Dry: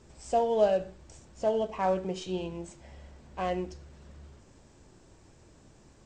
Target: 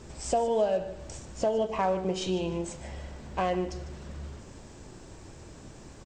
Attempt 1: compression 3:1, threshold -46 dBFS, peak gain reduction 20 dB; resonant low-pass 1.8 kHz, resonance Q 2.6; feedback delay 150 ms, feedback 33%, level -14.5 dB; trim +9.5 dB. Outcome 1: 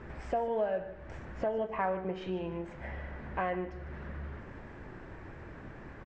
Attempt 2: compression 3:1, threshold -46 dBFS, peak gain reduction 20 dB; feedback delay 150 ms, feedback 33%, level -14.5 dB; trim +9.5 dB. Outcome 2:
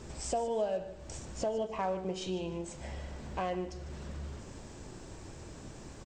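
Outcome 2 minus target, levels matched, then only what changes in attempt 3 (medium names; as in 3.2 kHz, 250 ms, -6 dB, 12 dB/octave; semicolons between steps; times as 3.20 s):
compression: peak gain reduction +6.5 dB
change: compression 3:1, threshold -36.5 dBFS, peak gain reduction 13.5 dB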